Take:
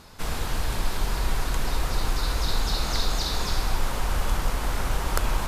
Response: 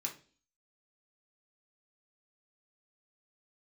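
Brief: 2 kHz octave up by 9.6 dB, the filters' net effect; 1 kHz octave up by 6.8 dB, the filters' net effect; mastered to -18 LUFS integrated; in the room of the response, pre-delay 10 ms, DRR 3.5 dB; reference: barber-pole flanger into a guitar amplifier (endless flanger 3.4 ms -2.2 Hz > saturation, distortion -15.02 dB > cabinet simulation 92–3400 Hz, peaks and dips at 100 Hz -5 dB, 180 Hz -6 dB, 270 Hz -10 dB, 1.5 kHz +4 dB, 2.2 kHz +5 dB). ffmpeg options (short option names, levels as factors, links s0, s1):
-filter_complex "[0:a]equalizer=f=1000:t=o:g=6,equalizer=f=2000:t=o:g=5.5,asplit=2[s0][s1];[1:a]atrim=start_sample=2205,adelay=10[s2];[s1][s2]afir=irnorm=-1:irlink=0,volume=0.668[s3];[s0][s3]amix=inputs=2:normalize=0,asplit=2[s4][s5];[s5]adelay=3.4,afreqshift=-2.2[s6];[s4][s6]amix=inputs=2:normalize=1,asoftclip=threshold=0.0891,highpass=92,equalizer=f=100:t=q:w=4:g=-5,equalizer=f=180:t=q:w=4:g=-6,equalizer=f=270:t=q:w=4:g=-10,equalizer=f=1500:t=q:w=4:g=4,equalizer=f=2200:t=q:w=4:g=5,lowpass=f=3400:w=0.5412,lowpass=f=3400:w=1.3066,volume=4.22"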